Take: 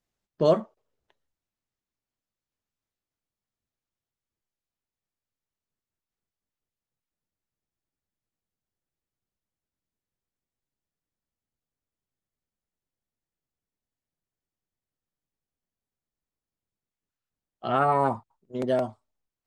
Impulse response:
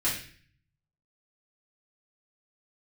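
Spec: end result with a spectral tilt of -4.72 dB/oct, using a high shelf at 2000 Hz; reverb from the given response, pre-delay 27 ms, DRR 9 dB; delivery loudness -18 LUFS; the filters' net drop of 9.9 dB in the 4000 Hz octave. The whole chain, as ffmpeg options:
-filter_complex "[0:a]highshelf=f=2k:g=-5.5,equalizer=f=4k:t=o:g=-8.5,asplit=2[a][b];[1:a]atrim=start_sample=2205,adelay=27[c];[b][c]afir=irnorm=-1:irlink=0,volume=-18dB[d];[a][d]amix=inputs=2:normalize=0,volume=8.5dB"

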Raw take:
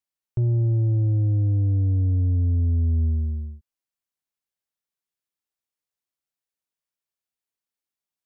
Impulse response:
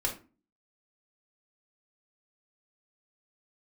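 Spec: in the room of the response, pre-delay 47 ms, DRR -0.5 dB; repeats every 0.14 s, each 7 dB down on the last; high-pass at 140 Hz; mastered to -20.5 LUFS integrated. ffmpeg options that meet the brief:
-filter_complex "[0:a]highpass=140,aecho=1:1:140|280|420|560|700:0.447|0.201|0.0905|0.0407|0.0183,asplit=2[a][b];[1:a]atrim=start_sample=2205,adelay=47[c];[b][c]afir=irnorm=-1:irlink=0,volume=-5dB[d];[a][d]amix=inputs=2:normalize=0,volume=3dB"

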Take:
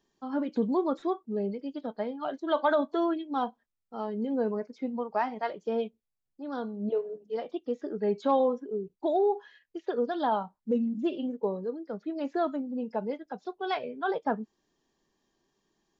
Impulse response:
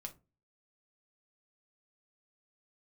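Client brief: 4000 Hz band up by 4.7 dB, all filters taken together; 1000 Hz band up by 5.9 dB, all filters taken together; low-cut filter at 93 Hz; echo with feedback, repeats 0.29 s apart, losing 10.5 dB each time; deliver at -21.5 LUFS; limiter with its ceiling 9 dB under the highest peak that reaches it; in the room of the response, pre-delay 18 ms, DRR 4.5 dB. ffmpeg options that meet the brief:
-filter_complex "[0:a]highpass=93,equalizer=f=1k:t=o:g=7.5,equalizer=f=4k:t=o:g=5.5,alimiter=limit=-18dB:level=0:latency=1,aecho=1:1:290|580|870:0.299|0.0896|0.0269,asplit=2[a][b];[1:a]atrim=start_sample=2205,adelay=18[c];[b][c]afir=irnorm=-1:irlink=0,volume=-0.5dB[d];[a][d]amix=inputs=2:normalize=0,volume=7.5dB"

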